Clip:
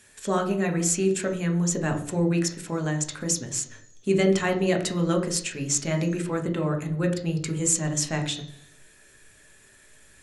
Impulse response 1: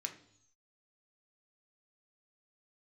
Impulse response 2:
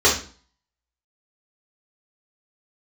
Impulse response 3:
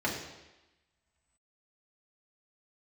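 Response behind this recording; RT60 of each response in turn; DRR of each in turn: 1; 0.70, 0.40, 1.0 seconds; 4.0, −7.0, −4.5 decibels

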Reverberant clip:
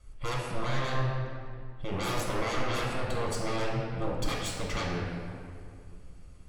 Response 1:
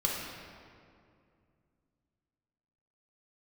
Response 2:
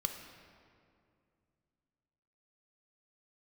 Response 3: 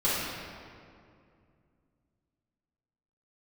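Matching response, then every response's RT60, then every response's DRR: 1; 2.4, 2.4, 2.4 seconds; −4.5, 4.0, −12.5 decibels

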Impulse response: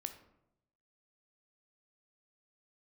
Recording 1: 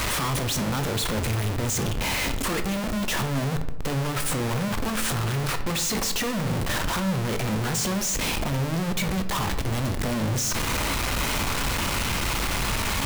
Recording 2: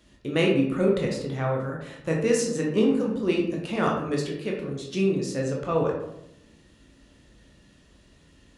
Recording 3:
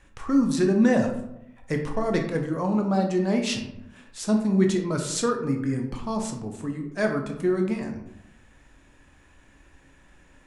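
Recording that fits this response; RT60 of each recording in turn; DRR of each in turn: 1; 0.85, 0.85, 0.85 seconds; 7.5, −1.5, 3.0 decibels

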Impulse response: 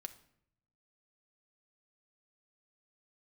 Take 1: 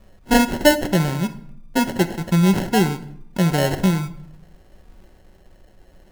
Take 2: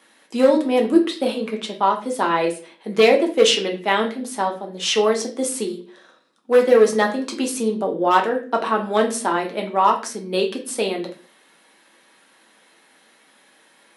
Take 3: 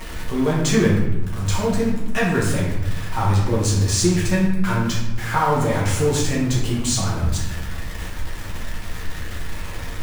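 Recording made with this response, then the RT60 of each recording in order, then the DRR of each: 1; 0.70, 0.40, 1.0 seconds; 8.0, 0.5, −5.5 decibels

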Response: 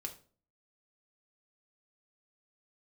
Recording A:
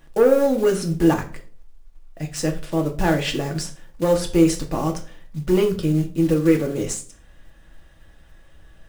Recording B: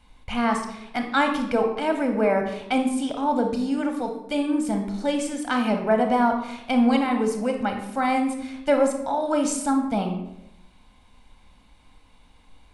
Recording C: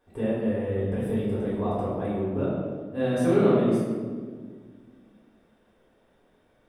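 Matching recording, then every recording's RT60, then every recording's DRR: A; 0.45, 0.85, 1.7 seconds; 1.5, 4.0, −9.0 decibels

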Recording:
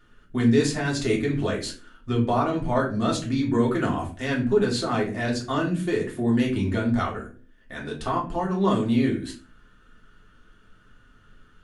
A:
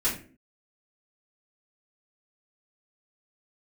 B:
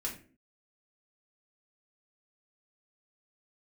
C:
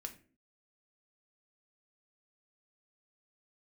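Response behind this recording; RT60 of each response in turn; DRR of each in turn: B; 0.40, 0.40, 0.40 seconds; −11.0, −3.5, 4.5 decibels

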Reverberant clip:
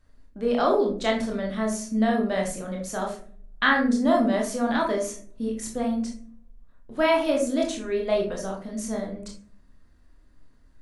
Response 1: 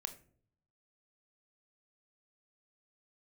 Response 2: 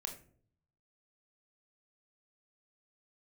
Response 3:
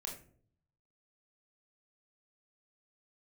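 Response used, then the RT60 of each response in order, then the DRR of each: 3; non-exponential decay, non-exponential decay, non-exponential decay; 8.5, 3.5, −0.5 decibels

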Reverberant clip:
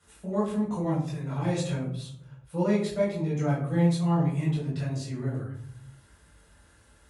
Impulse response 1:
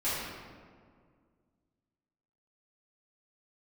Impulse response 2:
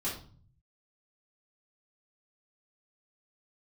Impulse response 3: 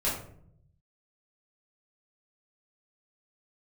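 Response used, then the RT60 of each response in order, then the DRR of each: 3; 2.0, 0.45, 0.65 seconds; −14.0, −9.0, −8.5 decibels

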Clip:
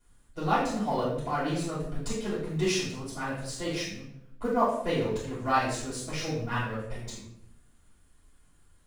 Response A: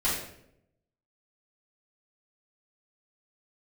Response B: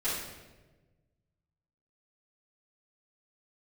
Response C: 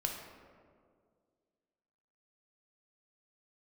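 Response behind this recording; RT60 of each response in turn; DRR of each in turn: A; 0.75, 1.2, 2.0 seconds; −11.5, −13.5, 1.0 decibels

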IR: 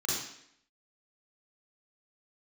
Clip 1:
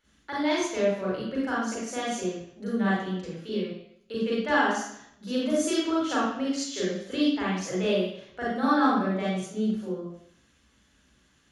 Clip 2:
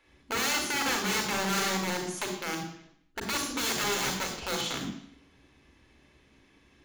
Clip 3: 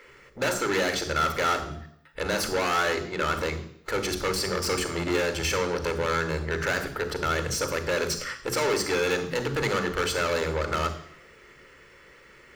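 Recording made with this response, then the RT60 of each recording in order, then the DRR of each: 1; 0.70, 0.70, 0.70 seconds; −6.5, 3.0, 10.5 decibels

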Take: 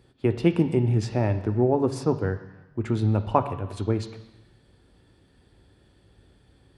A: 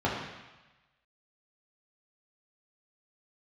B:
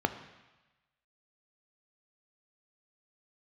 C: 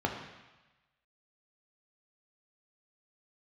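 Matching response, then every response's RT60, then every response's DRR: B; 1.1, 1.1, 1.1 seconds; −5.5, 8.5, 1.0 decibels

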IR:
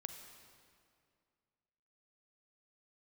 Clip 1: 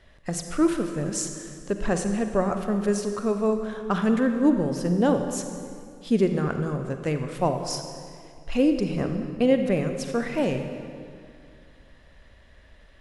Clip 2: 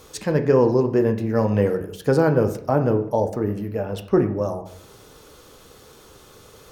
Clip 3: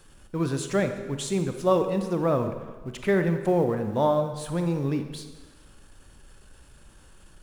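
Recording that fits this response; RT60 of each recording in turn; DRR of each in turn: 1; 2.3, 0.65, 1.4 seconds; 6.0, 6.0, 7.0 decibels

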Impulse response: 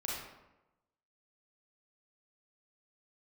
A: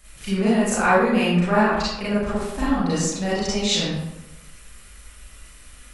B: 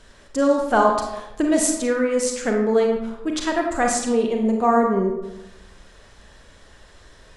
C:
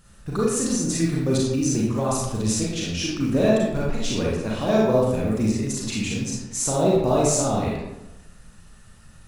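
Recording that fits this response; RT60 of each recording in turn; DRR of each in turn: C; 1.0, 1.0, 1.0 seconds; −10.5, 1.5, −5.0 decibels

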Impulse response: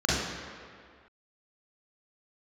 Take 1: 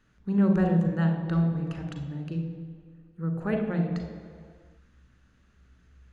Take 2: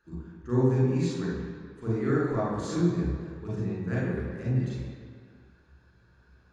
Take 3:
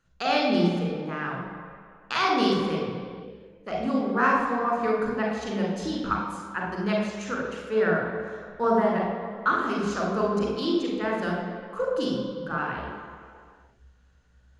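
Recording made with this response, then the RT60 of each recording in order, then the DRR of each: 2; 2.0, 2.0, 2.0 seconds; 4.5, −7.0, −1.5 decibels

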